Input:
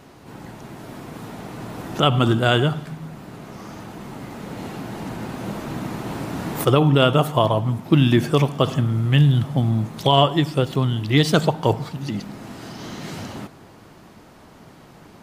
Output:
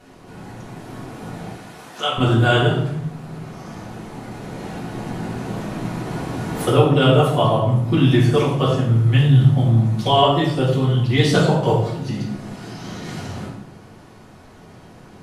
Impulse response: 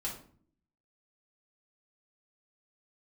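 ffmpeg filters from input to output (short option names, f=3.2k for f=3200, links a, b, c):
-filter_complex "[0:a]asettb=1/sr,asplit=3[a][b][c];[a]atrim=end=1.514[d];[b]atrim=start=1.51:end=2.18,asetpts=PTS-STARTPTS,afade=t=in:d=0.004:c=qsin,afade=t=out:st=0.666:d=0.004:c=qsin,highpass=f=1.3k:p=1[e];[c]atrim=start=2.176[f];[d][e]acrossfade=d=0.004:c1=hsin:c2=qsin[g];[g][f]acrossfade=d=0.004:c1=qsin:c2=hsin[h];[1:a]atrim=start_sample=2205,afade=t=out:st=0.31:d=0.01,atrim=end_sample=14112,asetrate=24696,aresample=44100[i];[h][i]afir=irnorm=-1:irlink=0,volume=-4.5dB"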